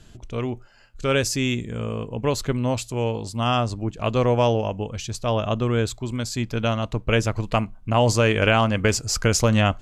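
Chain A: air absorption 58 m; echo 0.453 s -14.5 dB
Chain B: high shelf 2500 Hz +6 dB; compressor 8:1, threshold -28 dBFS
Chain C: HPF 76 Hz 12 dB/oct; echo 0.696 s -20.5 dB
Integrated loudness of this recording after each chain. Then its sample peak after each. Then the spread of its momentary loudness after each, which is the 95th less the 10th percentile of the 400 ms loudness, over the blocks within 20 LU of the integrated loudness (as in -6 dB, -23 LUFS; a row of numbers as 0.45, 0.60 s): -23.5, -32.5, -23.0 LUFS; -5.5, -15.5, -5.0 dBFS; 10, 4, 11 LU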